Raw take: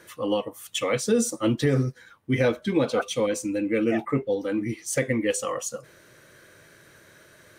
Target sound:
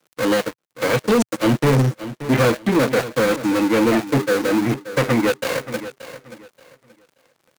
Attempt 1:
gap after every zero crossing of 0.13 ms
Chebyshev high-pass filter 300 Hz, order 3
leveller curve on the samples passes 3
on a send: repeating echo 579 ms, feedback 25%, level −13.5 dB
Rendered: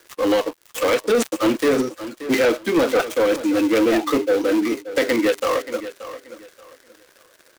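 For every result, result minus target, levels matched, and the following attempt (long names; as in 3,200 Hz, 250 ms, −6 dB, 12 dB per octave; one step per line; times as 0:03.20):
125 Hz band −17.0 dB; gap after every zero crossing: distortion −7 dB
gap after every zero crossing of 0.13 ms
Chebyshev high-pass filter 120 Hz, order 3
leveller curve on the samples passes 3
on a send: repeating echo 579 ms, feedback 25%, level −13.5 dB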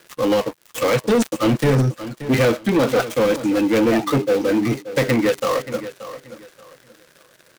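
gap after every zero crossing: distortion −7 dB
gap after every zero crossing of 0.4 ms
Chebyshev high-pass filter 120 Hz, order 3
leveller curve on the samples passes 3
on a send: repeating echo 579 ms, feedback 25%, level −13.5 dB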